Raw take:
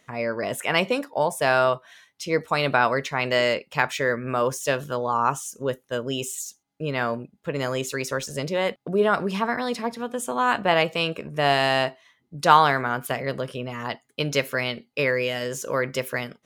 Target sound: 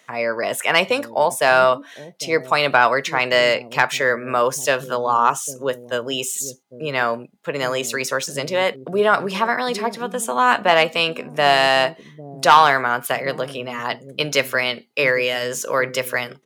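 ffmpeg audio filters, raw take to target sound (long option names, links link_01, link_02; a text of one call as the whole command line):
ffmpeg -i in.wav -filter_complex "[0:a]highpass=130,acrossover=split=480[link_01][link_02];[link_01]aecho=1:1:803:0.531[link_03];[link_02]aeval=exprs='0.794*sin(PI/2*1.58*val(0)/0.794)':channel_layout=same[link_04];[link_03][link_04]amix=inputs=2:normalize=0,volume=-1dB" out.wav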